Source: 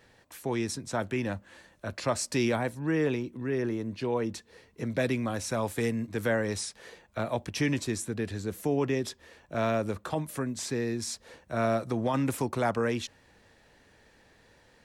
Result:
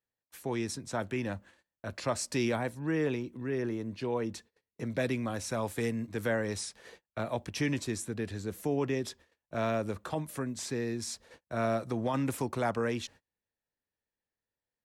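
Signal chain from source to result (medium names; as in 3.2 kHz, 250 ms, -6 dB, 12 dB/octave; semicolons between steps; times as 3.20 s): gate -49 dBFS, range -32 dB; trim -3 dB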